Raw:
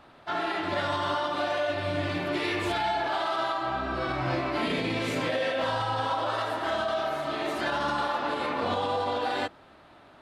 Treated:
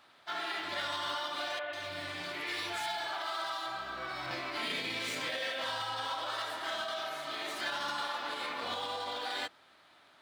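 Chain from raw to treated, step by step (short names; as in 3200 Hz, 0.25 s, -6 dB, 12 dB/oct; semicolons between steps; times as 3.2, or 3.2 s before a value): median filter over 3 samples; HPF 120 Hz 6 dB/oct; tilt shelf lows -8.5 dB, about 1300 Hz; notch 2700 Hz, Q 20; 1.59–4.31 three bands offset in time mids, lows, highs 40/140 ms, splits 310/2900 Hz; gain -6.5 dB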